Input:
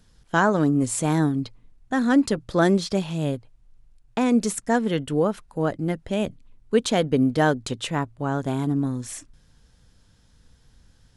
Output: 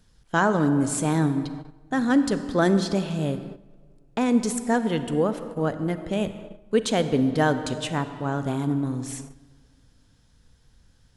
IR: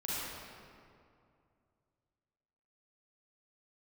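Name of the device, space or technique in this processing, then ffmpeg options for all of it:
keyed gated reverb: -filter_complex "[0:a]asplit=3[a][b][c];[1:a]atrim=start_sample=2205[d];[b][d]afir=irnorm=-1:irlink=0[e];[c]apad=whole_len=492537[f];[e][f]sidechaingate=range=-12dB:threshold=-46dB:ratio=16:detection=peak,volume=-13dB[g];[a][g]amix=inputs=2:normalize=0,volume=-2.5dB"

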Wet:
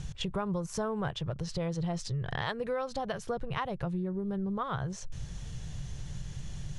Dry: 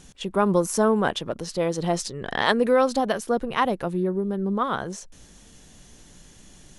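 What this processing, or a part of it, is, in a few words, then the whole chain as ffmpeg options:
jukebox: -af "lowpass=6.5k,lowshelf=f=180:t=q:w=3:g=10.5,acompressor=threshold=-34dB:ratio=5,volume=2dB"

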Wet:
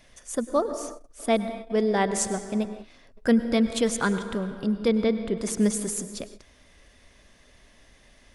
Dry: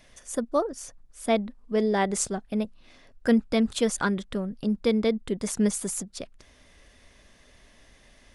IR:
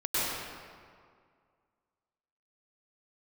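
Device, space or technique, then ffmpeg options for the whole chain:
keyed gated reverb: -filter_complex "[0:a]asettb=1/sr,asplit=3[a][b][c];[a]atrim=end=4.884[d];[b]atrim=start=4.88:end=5.39,asetpts=PTS-STARTPTS,afade=t=in:d=0.004:c=qsin,afade=t=out:st=0.506:d=0.004:c=qsin,aemphasis=mode=reproduction:type=50fm[e];[c]atrim=start=5.386[f];[d][e]acrossfade=d=0.004:c1=hsin:c2=qsin[g];[g][f]acrossfade=d=0.004:c1=qsin:c2=hsin,asplit=3[h][i][j];[1:a]atrim=start_sample=2205[k];[i][k]afir=irnorm=-1:irlink=0[l];[j]apad=whole_len=367816[m];[l][m]sidechaingate=range=-33dB:threshold=-46dB:ratio=16:detection=peak,volume=-19.5dB[n];[h][n]amix=inputs=2:normalize=0"

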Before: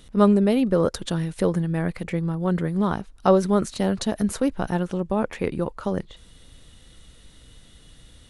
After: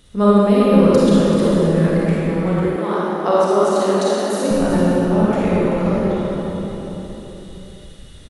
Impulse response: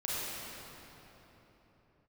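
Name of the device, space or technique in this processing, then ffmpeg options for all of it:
cave: -filter_complex "[0:a]aecho=1:1:385:0.316[a];[1:a]atrim=start_sample=2205[b];[a][b]afir=irnorm=-1:irlink=0,asettb=1/sr,asplit=3[c][d][e];[c]atrim=end=2.764[f];[d]atrim=start=2.76:end=4.51,asetpts=PTS-STARTPTS,afade=t=in:d=0.004:c=qsin,afade=t=out:st=1.746:d=0.004:c=qsin,highpass=f=260:w=0.5412,highpass=f=260:w=1.3066[g];[e]atrim=start=4.506[h];[f][g]acrossfade=d=0.004:c1=hsin:c2=qsin[i];[i][h]acrossfade=d=0.004:c1=qsin:c2=hsin,volume=1dB"

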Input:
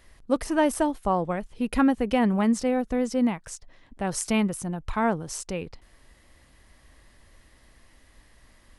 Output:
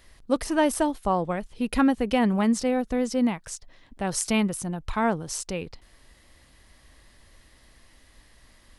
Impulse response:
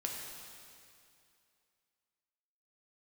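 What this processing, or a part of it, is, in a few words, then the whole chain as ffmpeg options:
presence and air boost: -af "equalizer=f=4.1k:t=o:w=1.1:g=4,highshelf=f=9.8k:g=4"

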